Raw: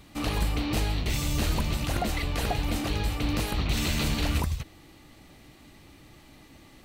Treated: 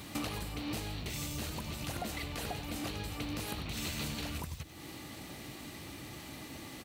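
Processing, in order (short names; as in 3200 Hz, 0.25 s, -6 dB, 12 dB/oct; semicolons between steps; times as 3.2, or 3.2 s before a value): compressor 8:1, threshold -41 dBFS, peak gain reduction 18.5 dB; HPF 80 Hz 12 dB/oct; high shelf 5400 Hz +5 dB; crackle 220/s -54 dBFS; on a send: echo 96 ms -13 dB; on the sum: gain +6 dB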